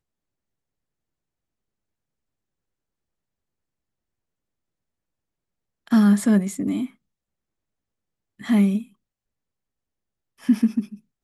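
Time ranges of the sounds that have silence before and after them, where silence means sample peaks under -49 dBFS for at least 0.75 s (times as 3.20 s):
5.87–6.93 s
8.39–8.92 s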